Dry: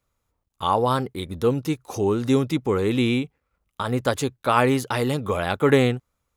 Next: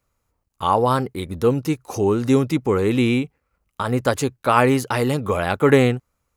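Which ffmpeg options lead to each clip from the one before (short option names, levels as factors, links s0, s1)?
-af "equalizer=f=3500:t=o:w=0.25:g=-6.5,volume=1.41"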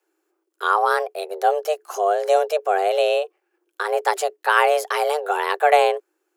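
-af "afreqshift=300,volume=0.891"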